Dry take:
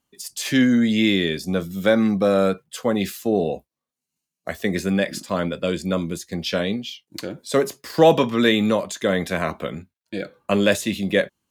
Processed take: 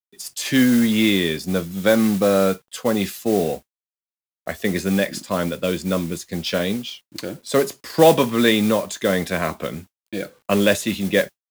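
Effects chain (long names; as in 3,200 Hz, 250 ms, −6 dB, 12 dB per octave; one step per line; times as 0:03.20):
bit-depth reduction 10 bits, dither none
noise that follows the level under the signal 17 dB
level +1 dB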